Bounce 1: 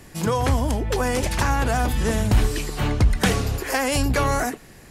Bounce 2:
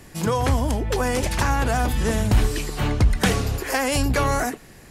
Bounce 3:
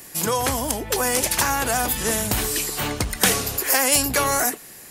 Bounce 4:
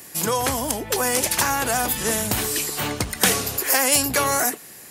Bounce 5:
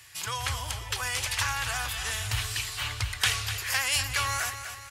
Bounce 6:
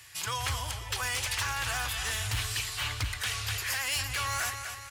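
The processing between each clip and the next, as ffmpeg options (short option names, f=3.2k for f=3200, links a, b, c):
-af anull
-af "aemphasis=mode=production:type=bsi,volume=1dB"
-af "highpass=75"
-af "firequalizer=gain_entry='entry(110,0);entry(170,-29);entry(1100,-7);entry(2900,-1);entry(5800,-8);entry(14000,-19)':delay=0.05:min_phase=1,aecho=1:1:248|496|744|992|1240:0.316|0.158|0.0791|0.0395|0.0198"
-af "alimiter=limit=-17dB:level=0:latency=1:release=288,volume=25.5dB,asoftclip=hard,volume=-25.5dB"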